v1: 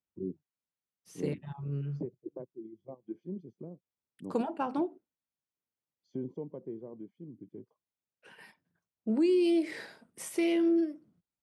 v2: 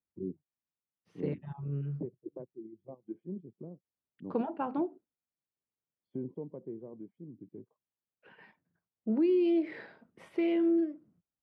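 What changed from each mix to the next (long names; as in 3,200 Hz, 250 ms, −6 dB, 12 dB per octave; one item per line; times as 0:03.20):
first voice: add high-frequency loss of the air 170 metres
master: add high-frequency loss of the air 400 metres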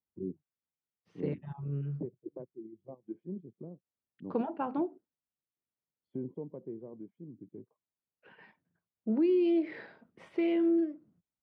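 master: add low-pass filter 7,000 Hz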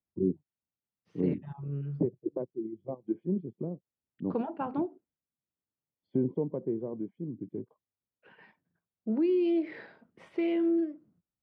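first voice +10.0 dB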